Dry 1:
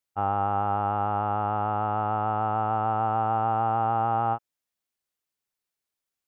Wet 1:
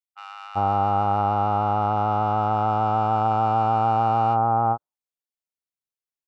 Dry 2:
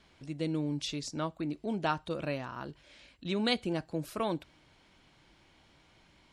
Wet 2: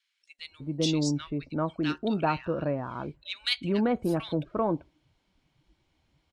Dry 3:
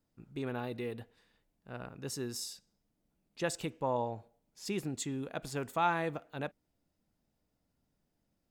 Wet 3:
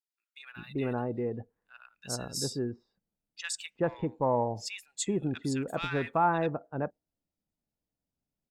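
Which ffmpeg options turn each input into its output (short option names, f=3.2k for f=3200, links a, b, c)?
-filter_complex "[0:a]afftdn=nr=17:nf=-50,asplit=2[a][b];[b]asoftclip=type=tanh:threshold=-26.5dB,volume=-6dB[c];[a][c]amix=inputs=2:normalize=0,acrossover=split=1600[d][e];[d]adelay=390[f];[f][e]amix=inputs=2:normalize=0,volume=3dB"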